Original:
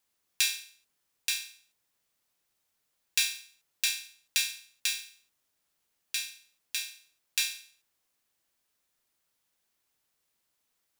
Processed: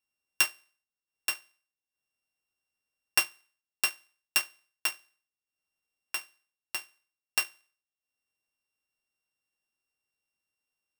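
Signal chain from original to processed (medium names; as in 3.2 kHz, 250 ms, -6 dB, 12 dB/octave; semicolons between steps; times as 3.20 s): sorted samples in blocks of 16 samples; transient shaper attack +6 dB, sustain -9 dB; upward expansion 1.5:1, over -32 dBFS; trim -2 dB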